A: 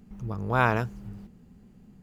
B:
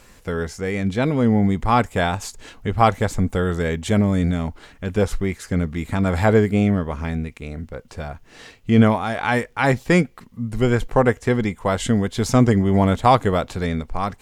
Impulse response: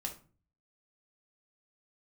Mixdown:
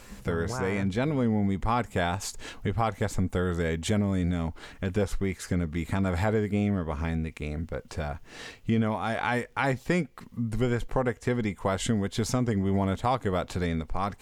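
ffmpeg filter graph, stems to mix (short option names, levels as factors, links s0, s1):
-filter_complex "[0:a]lowpass=1900,alimiter=limit=0.0841:level=0:latency=1,volume=1.26[s0];[1:a]alimiter=limit=0.447:level=0:latency=1:release=290,volume=1.06,asplit=2[s1][s2];[s2]apad=whole_len=89348[s3];[s0][s3]sidechaingate=range=0.0224:threshold=0.00501:ratio=16:detection=peak[s4];[s4][s1]amix=inputs=2:normalize=0,acompressor=threshold=0.0355:ratio=2"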